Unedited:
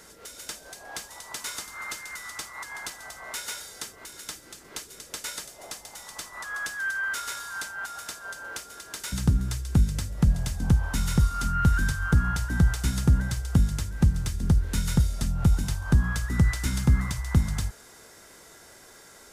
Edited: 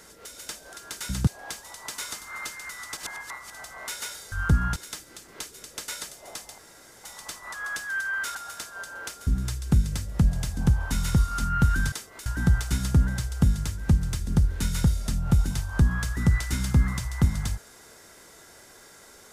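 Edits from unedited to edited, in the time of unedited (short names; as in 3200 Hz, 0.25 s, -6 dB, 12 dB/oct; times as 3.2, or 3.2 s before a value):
2.43–2.96 reverse
3.78–4.12 swap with 11.95–12.39
5.94 insert room tone 0.46 s
7.25–7.84 cut
8.76–9.3 move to 0.73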